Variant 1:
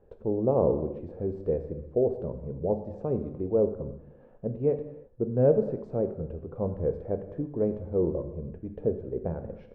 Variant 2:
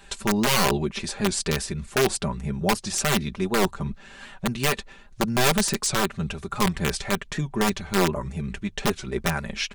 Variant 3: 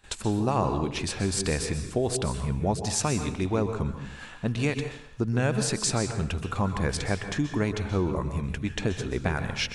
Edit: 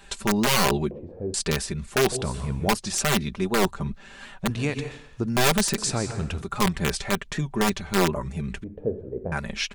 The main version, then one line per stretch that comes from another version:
2
0.91–1.34 s: from 1
2.12–2.68 s: from 3
4.50–5.26 s: from 3
5.78–6.42 s: from 3
8.64–9.32 s: from 1

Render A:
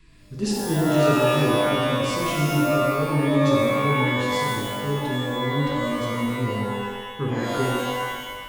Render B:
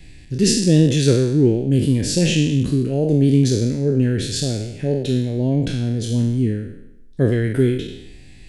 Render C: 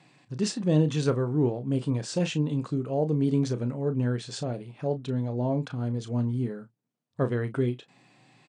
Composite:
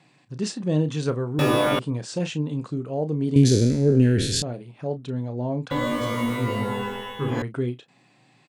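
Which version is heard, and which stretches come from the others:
C
1.39–1.79 s: from A
3.36–4.42 s: from B
5.71–7.42 s: from A

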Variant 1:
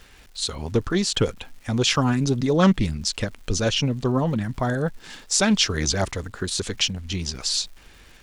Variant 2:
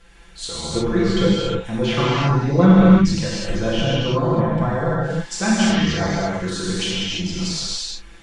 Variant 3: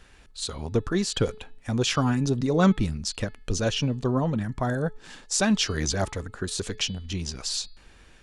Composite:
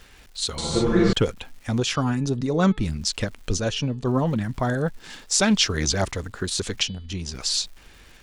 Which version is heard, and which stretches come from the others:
1
0.58–1.13 s: from 2
1.80–2.86 s: from 3
3.57–4.07 s: from 3
6.83–7.32 s: from 3

